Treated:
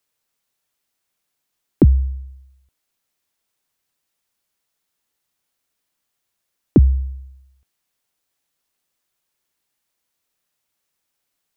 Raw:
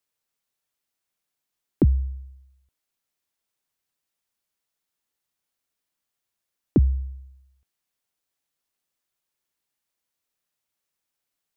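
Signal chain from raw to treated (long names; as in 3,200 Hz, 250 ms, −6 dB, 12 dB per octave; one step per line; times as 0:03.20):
0:01.86–0:02.28: running median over 25 samples
level +6.5 dB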